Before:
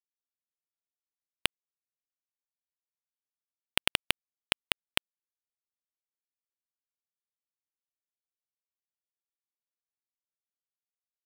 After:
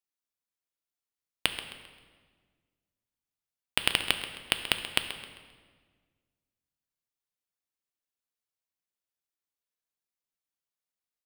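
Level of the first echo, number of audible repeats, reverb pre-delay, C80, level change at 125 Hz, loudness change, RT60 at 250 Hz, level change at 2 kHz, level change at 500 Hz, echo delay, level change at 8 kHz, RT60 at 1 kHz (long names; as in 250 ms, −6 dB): −13.0 dB, 3, 3 ms, 8.5 dB, +2.5 dB, +1.5 dB, 2.0 s, +2.0 dB, +2.0 dB, 132 ms, +2.0 dB, 1.4 s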